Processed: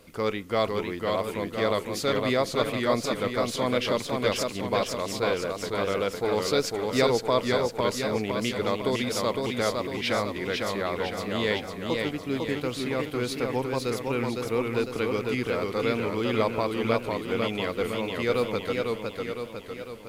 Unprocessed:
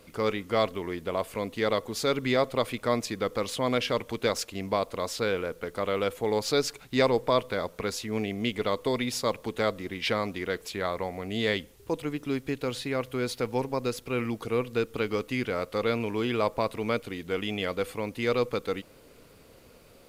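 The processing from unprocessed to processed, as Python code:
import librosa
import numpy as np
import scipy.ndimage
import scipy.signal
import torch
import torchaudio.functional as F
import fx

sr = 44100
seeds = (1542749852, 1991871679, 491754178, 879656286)

y = fx.echo_warbled(x, sr, ms=505, feedback_pct=55, rate_hz=2.8, cents=106, wet_db=-3.5)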